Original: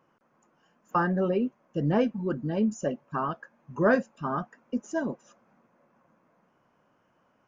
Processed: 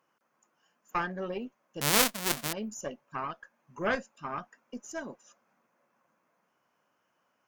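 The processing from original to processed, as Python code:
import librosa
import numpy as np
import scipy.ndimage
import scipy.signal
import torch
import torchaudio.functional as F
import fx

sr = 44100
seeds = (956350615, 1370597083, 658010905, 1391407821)

y = fx.halfwave_hold(x, sr, at=(1.81, 2.53))
y = fx.tilt_eq(y, sr, slope=3.0)
y = fx.cheby_harmonics(y, sr, harmonics=(4,), levels_db=(-6,), full_scale_db=0.0)
y = y * 10.0 ** (-6.0 / 20.0)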